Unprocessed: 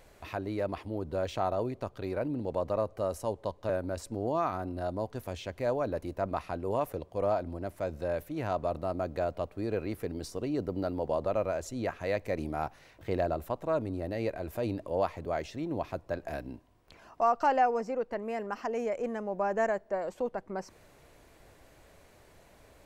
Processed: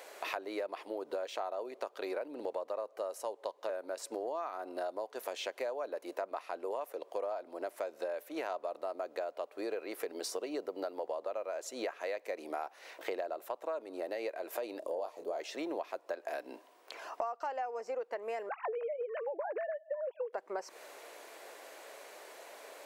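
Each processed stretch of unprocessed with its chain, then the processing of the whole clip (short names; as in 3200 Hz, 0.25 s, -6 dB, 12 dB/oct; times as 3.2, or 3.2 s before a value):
14.79–15.4 bell 1900 Hz -15 dB 1.7 oct + doubler 30 ms -8 dB
18.49–20.33 sine-wave speech + compressor 3:1, threshold -35 dBFS + bell 370 Hz +5.5 dB 0.68 oct
whole clip: HPF 410 Hz 24 dB/oct; compressor 12:1, threshold -44 dBFS; gain +9.5 dB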